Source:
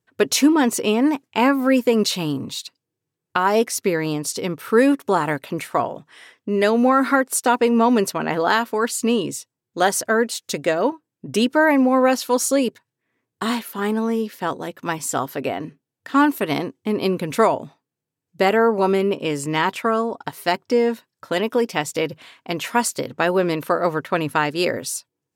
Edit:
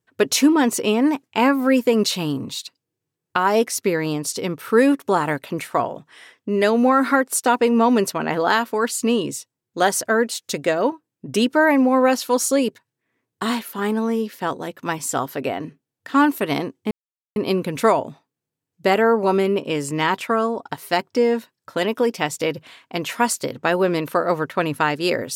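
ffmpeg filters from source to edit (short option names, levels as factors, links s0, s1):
-filter_complex "[0:a]asplit=2[s0][s1];[s0]atrim=end=16.91,asetpts=PTS-STARTPTS,afade=t=out:st=16.906:d=0.004:c=hsin,apad=pad_dur=0.45[s2];[s1]atrim=start=16.91,asetpts=PTS-STARTPTS,afade=t=in:d=0.004:c=hsin[s3];[s2][s3]concat=n=2:v=0:a=1"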